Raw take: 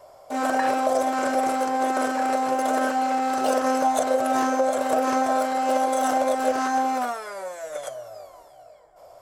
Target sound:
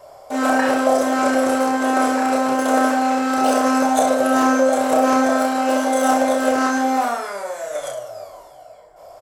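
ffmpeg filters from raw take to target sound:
-af "aecho=1:1:30|64.5|104.2|149.8|202.3:0.631|0.398|0.251|0.158|0.1,volume=4dB"

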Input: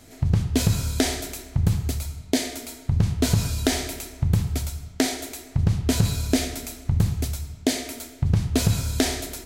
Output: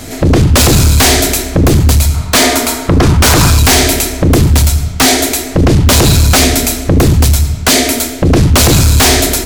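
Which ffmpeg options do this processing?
-filter_complex "[0:a]asettb=1/sr,asplit=3[a][b][c];[a]atrim=end=2.144[d];[b]atrim=start=2.14:end=3.59,asetpts=PTS-STARTPTS,afade=t=in:d=0.004:c=qsin,afade=t=out:st=1.446:d=0.004:c=qsin,equalizer=f=1.1k:t=o:w=1:g=11[e];[c]atrim=start=3.586[f];[d][e]acrossfade=d=0.004:c1=hsin:c2=qsin[g];[g][f]acrossfade=d=0.004:c1=qsin:c2=hsin,aeval=exprs='0.668*sin(PI/2*8.91*val(0)/0.668)':c=same"

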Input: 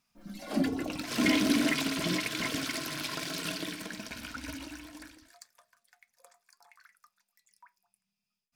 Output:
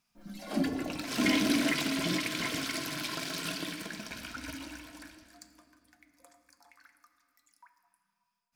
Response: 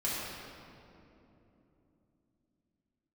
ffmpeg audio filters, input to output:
-filter_complex "[0:a]asplit=2[a][b];[b]lowshelf=f=360:g=-8.5[c];[1:a]atrim=start_sample=2205[d];[c][d]afir=irnorm=-1:irlink=0,volume=-12.5dB[e];[a][e]amix=inputs=2:normalize=0,volume=-2dB"

